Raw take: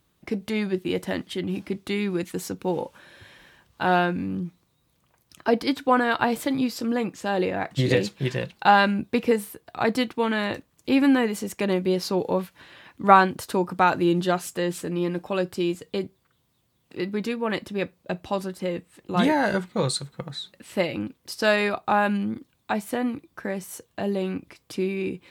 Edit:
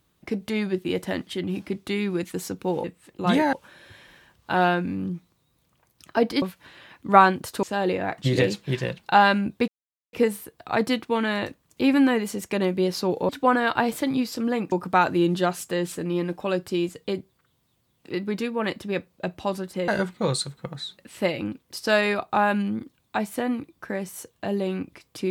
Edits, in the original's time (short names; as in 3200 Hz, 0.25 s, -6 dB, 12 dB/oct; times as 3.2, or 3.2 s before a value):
5.73–7.16 swap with 12.37–13.58
9.21 insert silence 0.45 s
18.74–19.43 move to 2.84